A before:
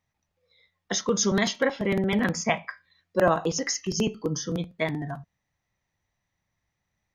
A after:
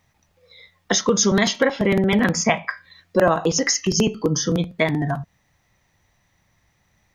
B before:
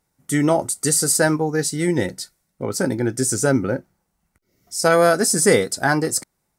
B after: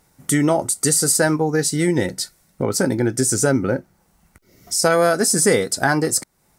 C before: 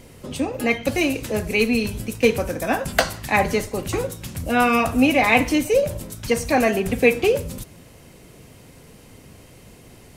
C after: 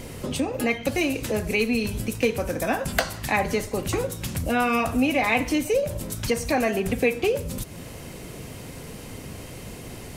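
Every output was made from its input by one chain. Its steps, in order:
compressor 2:1, threshold -38 dBFS; normalise peaks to -3 dBFS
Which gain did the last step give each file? +15.5, +13.0, +8.0 dB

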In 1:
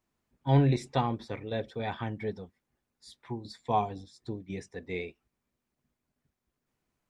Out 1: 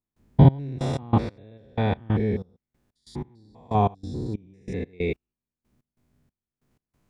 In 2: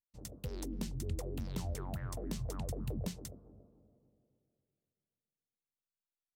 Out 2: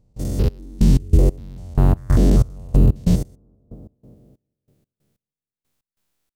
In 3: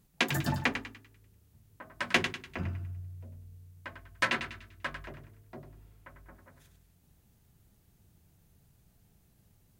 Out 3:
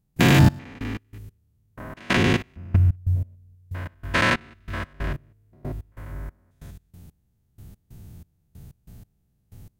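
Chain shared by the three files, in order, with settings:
stepped spectrum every 0.2 s; step gate ".xx..x.x...x" 93 bpm -24 dB; low shelf 380 Hz +9.5 dB; normalise peaks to -3 dBFS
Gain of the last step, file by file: +9.0, +20.5, +14.0 dB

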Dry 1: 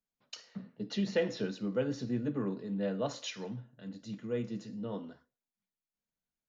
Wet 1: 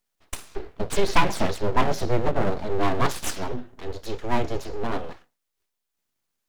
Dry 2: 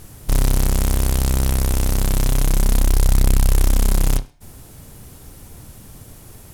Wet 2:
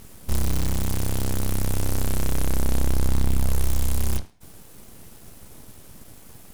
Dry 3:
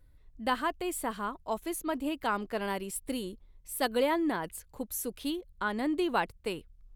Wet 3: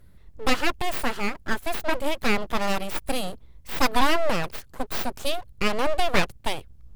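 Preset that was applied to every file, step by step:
tube stage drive 7 dB, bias 0.75; full-wave rectifier; match loudness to -27 LUFS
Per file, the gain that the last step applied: +19.0, +2.0, +15.0 dB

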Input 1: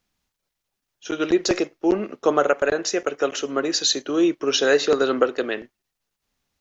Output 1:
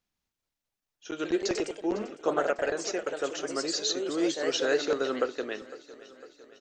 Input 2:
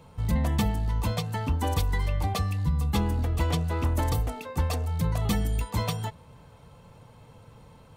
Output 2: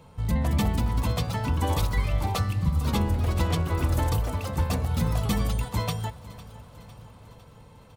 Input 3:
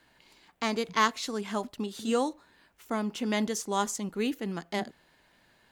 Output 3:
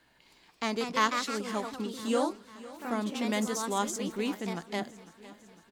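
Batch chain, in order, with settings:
echoes that change speed 0.254 s, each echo +2 st, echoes 2, each echo -6 dB; feedback echo 0.504 s, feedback 58%, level -18.5 dB; normalise peaks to -12 dBFS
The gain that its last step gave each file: -9.5, 0.0, -2.0 dB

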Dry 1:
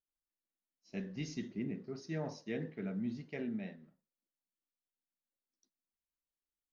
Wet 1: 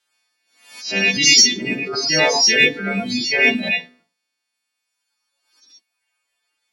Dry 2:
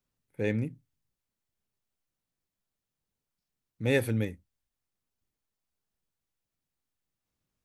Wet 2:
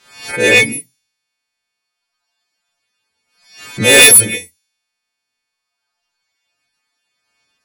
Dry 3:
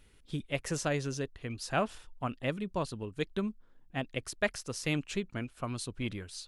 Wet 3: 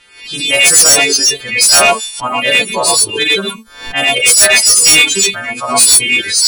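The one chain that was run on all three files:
frequency quantiser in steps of 2 st; low-pass opened by the level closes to 2500 Hz, open at -30.5 dBFS; tilt +4 dB/oct; non-linear reverb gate 0.15 s rising, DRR -5 dB; reverb removal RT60 1.6 s; dynamic EQ 470 Hz, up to +5 dB, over -40 dBFS, Q 0.74; soft clip -18.5 dBFS; backwards sustainer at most 100 dB/s; normalise peaks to -1.5 dBFS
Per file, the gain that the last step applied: +21.5, +16.5, +16.0 dB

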